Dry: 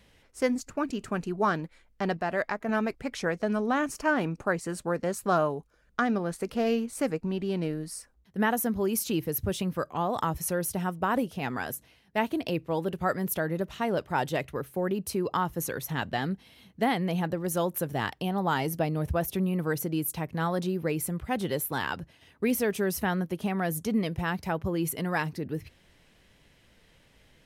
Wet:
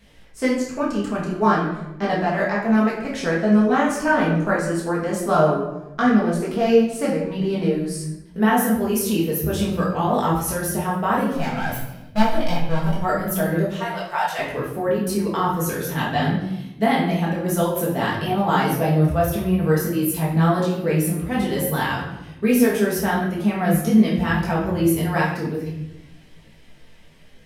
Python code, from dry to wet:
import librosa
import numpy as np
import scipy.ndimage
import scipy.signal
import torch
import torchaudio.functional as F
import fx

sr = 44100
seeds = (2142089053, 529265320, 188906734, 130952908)

y = fx.lower_of_two(x, sr, delay_ms=1.3, at=(11.32, 13.02))
y = fx.highpass(y, sr, hz=760.0, slope=24, at=(13.65, 14.39))
y = fx.room_shoebox(y, sr, seeds[0], volume_m3=310.0, walls='mixed', distance_m=1.6)
y = fx.detune_double(y, sr, cents=17)
y = y * 10.0 ** (6.5 / 20.0)